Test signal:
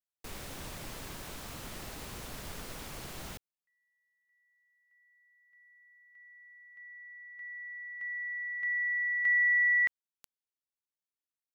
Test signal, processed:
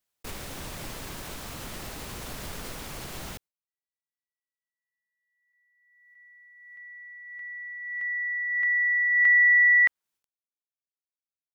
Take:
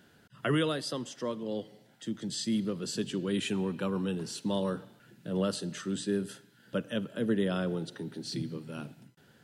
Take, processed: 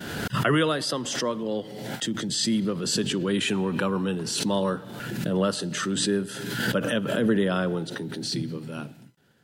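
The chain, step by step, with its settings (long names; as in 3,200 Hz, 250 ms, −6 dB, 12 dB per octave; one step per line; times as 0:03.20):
downward expander −53 dBFS, range −33 dB
dynamic equaliser 1,200 Hz, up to +5 dB, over −44 dBFS, Q 0.77
background raised ahead of every attack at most 35 dB per second
level +4.5 dB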